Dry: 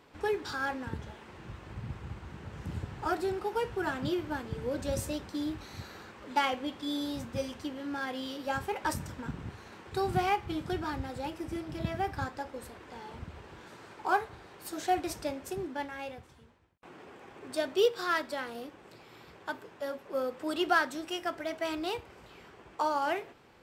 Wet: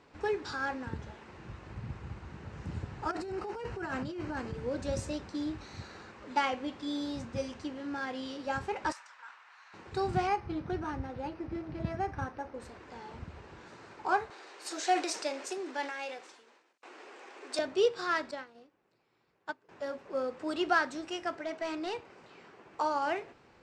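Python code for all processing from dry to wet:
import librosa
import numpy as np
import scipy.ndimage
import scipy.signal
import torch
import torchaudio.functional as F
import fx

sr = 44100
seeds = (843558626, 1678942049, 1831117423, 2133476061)

y = fx.chain(x, sr, fx.notch(hz=3500.0, q=8.3),
    fx.over_compress(threshold_db=-36.0, ratio=-1.0), at=(3.11, 4.54))
y = fx.chain(y, sr, fx.highpass(hz=1000.0, slope=24),
    fx.high_shelf(hz=4900.0, db=-11.0),
    fx.sustainer(db_per_s=100.0), at=(8.92, 9.74))
y = fx.chain(y, sr, fx.high_shelf(hz=5600.0, db=-9.5),
    fx.resample_linear(factor=6), at=(10.27, 12.6))
y = fx.chain(y, sr, fx.high_shelf(hz=2100.0, db=8.5),
    fx.transient(attack_db=1, sustain_db=6),
    fx.highpass(hz=320.0, slope=24), at=(14.3, 17.59))
y = fx.chain(y, sr, fx.lowpass(hz=9200.0, slope=12),
    fx.peak_eq(hz=75.0, db=-11.5, octaves=0.42),
    fx.upward_expand(threshold_db=-45.0, expansion=2.5), at=(18.31, 19.69))
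y = fx.chain(y, sr, fx.highpass(hz=160.0, slope=12),
    fx.overload_stage(gain_db=29.0),
    fx.high_shelf(hz=8700.0, db=-4.5), at=(21.36, 22.74))
y = scipy.signal.sosfilt(scipy.signal.butter(4, 7600.0, 'lowpass', fs=sr, output='sos'), y)
y = fx.peak_eq(y, sr, hz=3300.0, db=-5.0, octaves=0.24)
y = y * librosa.db_to_amplitude(-1.0)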